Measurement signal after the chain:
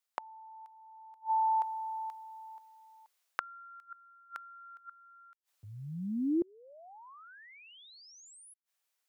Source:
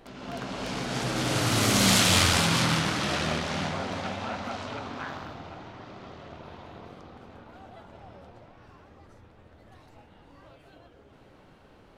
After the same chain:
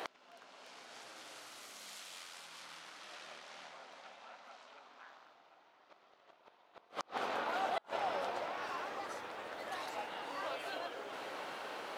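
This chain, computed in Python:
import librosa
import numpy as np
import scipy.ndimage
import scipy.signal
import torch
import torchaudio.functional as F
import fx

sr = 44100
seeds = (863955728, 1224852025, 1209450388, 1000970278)

y = scipy.signal.sosfilt(scipy.signal.butter(2, 610.0, 'highpass', fs=sr, output='sos'), x)
y = fx.rider(y, sr, range_db=5, speed_s=0.5)
y = fx.gate_flip(y, sr, shuts_db=-34.0, range_db=-34)
y = y * 10.0 ** (10.5 / 20.0)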